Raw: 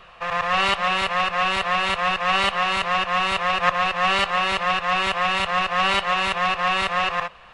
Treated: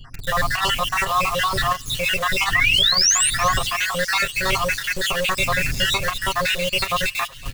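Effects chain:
time-frequency cells dropped at random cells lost 67%
wind on the microphone 88 Hz −42 dBFS
in parallel at −9.5 dB: log-companded quantiser 2 bits
on the sum: high-shelf EQ 3,500 Hz +10.5 dB
sound drawn into the spectrogram rise, 0:02.53–0:03.30, 1,800–9,400 Hz −14 dBFS
brickwall limiter −13 dBFS, peak gain reduction 15.5 dB
low-shelf EQ 200 Hz +8 dB
comb filter 7.4 ms, depth 67%
on a send: delay with a high-pass on its return 360 ms, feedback 64%, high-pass 2,900 Hz, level −17 dB

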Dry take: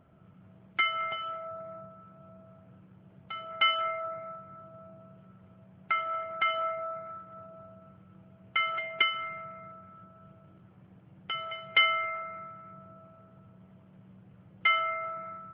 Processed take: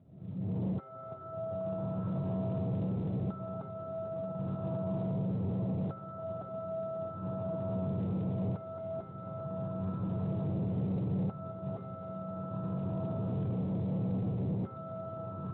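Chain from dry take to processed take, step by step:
camcorder AGC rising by 49 dB per second
spectral tilt −2.5 dB per octave
tube saturation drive 26 dB, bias 0.2
decimation without filtering 4×
Gaussian smoothing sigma 10 samples
feedback delay with all-pass diffusion 995 ms, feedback 52%, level −14 dB
level −4 dB
Speex 24 kbit/s 8,000 Hz

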